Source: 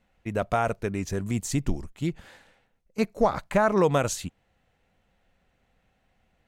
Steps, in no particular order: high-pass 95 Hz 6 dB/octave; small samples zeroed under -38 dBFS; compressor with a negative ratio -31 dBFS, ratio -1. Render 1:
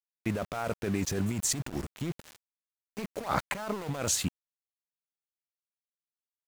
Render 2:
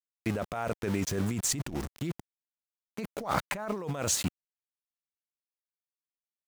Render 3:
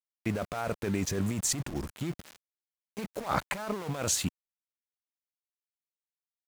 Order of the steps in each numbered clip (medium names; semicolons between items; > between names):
compressor with a negative ratio > high-pass > small samples zeroed; small samples zeroed > compressor with a negative ratio > high-pass; compressor with a negative ratio > small samples zeroed > high-pass